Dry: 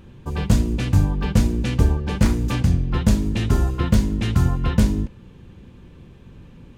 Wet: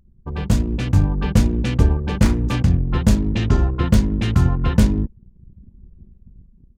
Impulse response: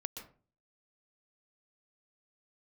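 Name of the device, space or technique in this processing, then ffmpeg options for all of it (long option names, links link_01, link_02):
voice memo with heavy noise removal: -filter_complex "[0:a]asettb=1/sr,asplit=3[link_01][link_02][link_03];[link_01]atrim=end=3.194[link_04];[link_02]atrim=start=3.19:end=3.75,asetpts=PTS-STARTPTS,afade=type=in:duration=0.004:curve=qsin,afade=type=out:start_time=0.556:duration=0.004:curve=qsin,lowpass=frequency=7500:width=0.5412,lowpass=frequency=7500:width=1.3066[link_05];[link_03]atrim=start=3.746[link_06];[link_04][link_05]acrossfade=duration=0.004:curve1=hsin:curve2=qsin[link_07];[link_07][link_06]acrossfade=duration=0.004:curve1=qsin:curve2=hsin,anlmdn=15.8,dynaudnorm=framelen=130:gausssize=13:maxgain=12dB,volume=-1dB"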